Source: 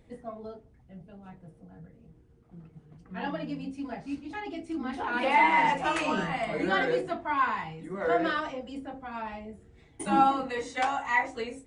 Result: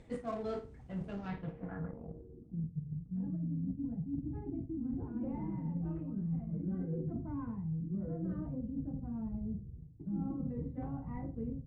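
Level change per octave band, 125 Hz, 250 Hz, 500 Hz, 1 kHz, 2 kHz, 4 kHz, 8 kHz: +6.5 dB, -2.0 dB, -12.5 dB, -25.0 dB, under -25 dB, under -25 dB, under -25 dB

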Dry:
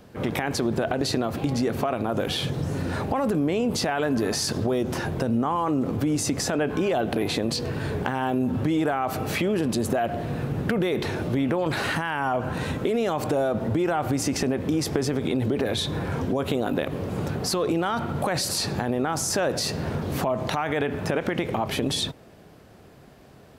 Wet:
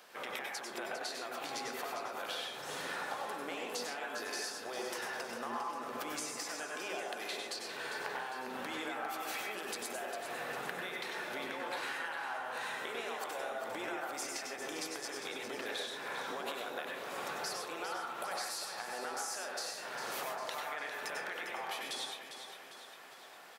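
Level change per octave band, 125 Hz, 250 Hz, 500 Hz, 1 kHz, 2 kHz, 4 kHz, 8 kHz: -34.5 dB, -24.5 dB, -16.5 dB, -10.5 dB, -7.0 dB, -10.0 dB, -10.5 dB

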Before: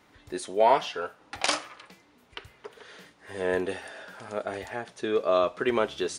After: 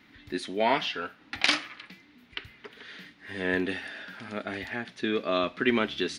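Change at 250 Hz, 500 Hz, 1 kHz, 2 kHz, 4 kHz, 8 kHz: +4.0 dB, -4.5 dB, -4.5 dB, +4.5 dB, +4.0 dB, -6.0 dB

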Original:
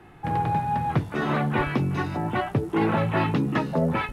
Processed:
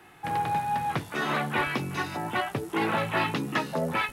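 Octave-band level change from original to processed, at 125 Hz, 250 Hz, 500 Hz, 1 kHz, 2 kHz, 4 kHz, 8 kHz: -9.5 dB, -7.0 dB, -4.0 dB, -1.5 dB, +1.5 dB, +4.0 dB, no reading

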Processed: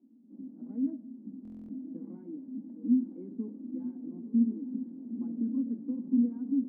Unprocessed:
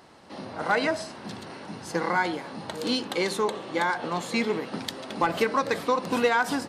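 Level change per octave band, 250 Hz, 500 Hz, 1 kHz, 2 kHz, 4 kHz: +2.5 dB, -24.0 dB, under -40 dB, under -40 dB, under -40 dB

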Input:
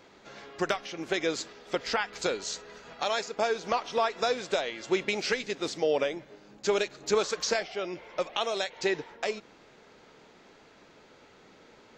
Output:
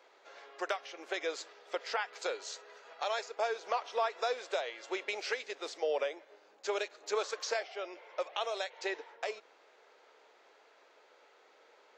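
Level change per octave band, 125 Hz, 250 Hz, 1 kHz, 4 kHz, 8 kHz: under -35 dB, -14.0 dB, -4.5 dB, -7.5 dB, -8.5 dB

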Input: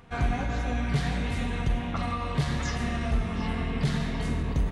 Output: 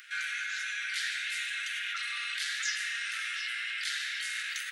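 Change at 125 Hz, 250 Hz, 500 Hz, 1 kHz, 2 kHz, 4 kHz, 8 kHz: under -40 dB, under -40 dB, under -40 dB, -11.5 dB, +6.0 dB, +6.5 dB, +6.5 dB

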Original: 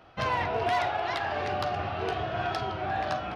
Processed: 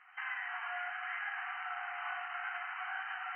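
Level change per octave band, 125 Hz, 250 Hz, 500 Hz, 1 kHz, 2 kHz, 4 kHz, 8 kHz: under -40 dB, under -40 dB, -23.0 dB, -12.5 dB, -2.5 dB, -12.5 dB, no reading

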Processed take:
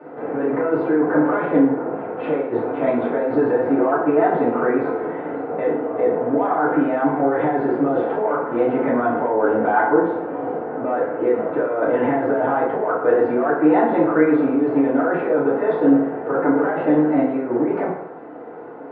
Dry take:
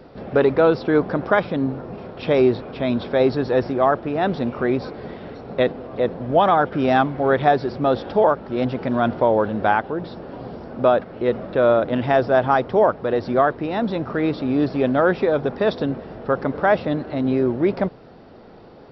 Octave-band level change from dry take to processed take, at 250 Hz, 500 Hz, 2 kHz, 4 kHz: +4.0 dB, +0.5 dB, -0.5 dB, under -15 dB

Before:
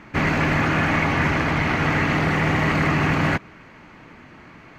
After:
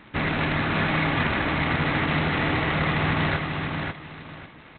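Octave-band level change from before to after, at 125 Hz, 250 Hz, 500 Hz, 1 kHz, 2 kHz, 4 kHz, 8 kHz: -3.5 dB, -4.0 dB, -3.5 dB, -3.0 dB, -3.0 dB, +1.0 dB, under -40 dB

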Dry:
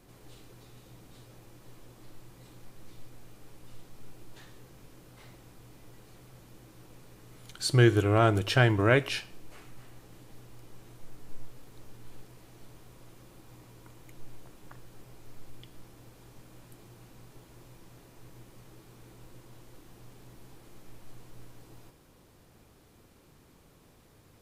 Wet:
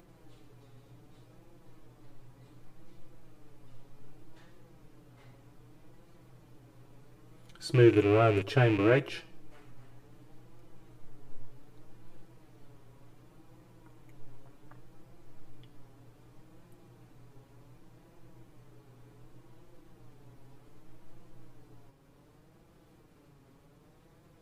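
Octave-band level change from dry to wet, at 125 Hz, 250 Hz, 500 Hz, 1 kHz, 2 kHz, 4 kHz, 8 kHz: -3.0 dB, +1.0 dB, +1.0 dB, -3.0 dB, -5.0 dB, -7.5 dB, under -10 dB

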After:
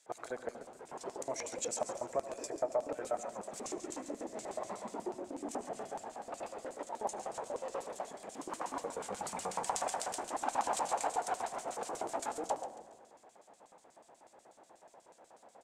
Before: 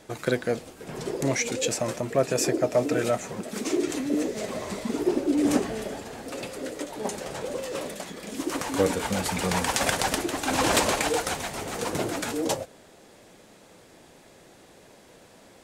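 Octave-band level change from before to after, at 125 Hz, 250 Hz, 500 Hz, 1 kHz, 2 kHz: -24.0 dB, -19.5 dB, -11.5 dB, -5.5 dB, -17.0 dB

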